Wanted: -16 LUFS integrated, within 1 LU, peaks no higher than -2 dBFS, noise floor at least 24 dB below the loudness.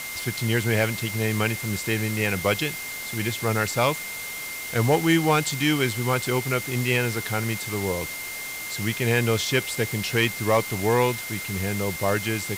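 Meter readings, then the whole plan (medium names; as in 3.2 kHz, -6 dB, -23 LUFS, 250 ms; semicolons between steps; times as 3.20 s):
steady tone 2.1 kHz; tone level -34 dBFS; noise floor -34 dBFS; noise floor target -49 dBFS; loudness -24.5 LUFS; peak level -9.5 dBFS; loudness target -16.0 LUFS
-> band-stop 2.1 kHz, Q 30; noise reduction 15 dB, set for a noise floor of -34 dBFS; trim +8.5 dB; peak limiter -2 dBFS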